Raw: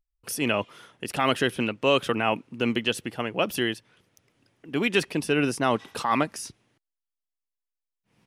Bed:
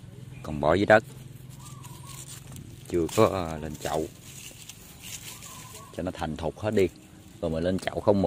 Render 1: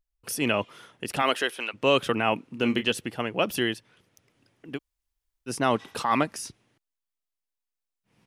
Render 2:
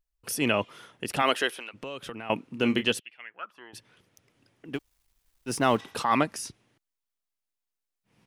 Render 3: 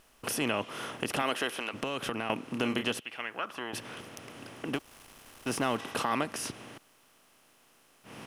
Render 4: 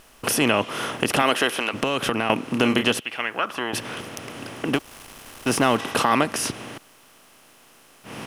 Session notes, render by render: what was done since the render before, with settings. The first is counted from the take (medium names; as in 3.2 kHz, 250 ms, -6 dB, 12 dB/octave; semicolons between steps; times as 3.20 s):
1.21–1.73 s: high-pass 300 Hz -> 900 Hz; 2.39–2.92 s: doubling 29 ms -10 dB; 4.76–5.49 s: room tone, crossfade 0.06 s
1.51–2.30 s: compression 4:1, threshold -37 dBFS; 2.98–3.73 s: band-pass filter 3.2 kHz -> 820 Hz, Q 7.5; 4.74–5.81 s: companding laws mixed up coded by mu
spectral levelling over time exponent 0.6; compression 2:1, threshold -33 dBFS, peak gain reduction 10 dB
trim +10.5 dB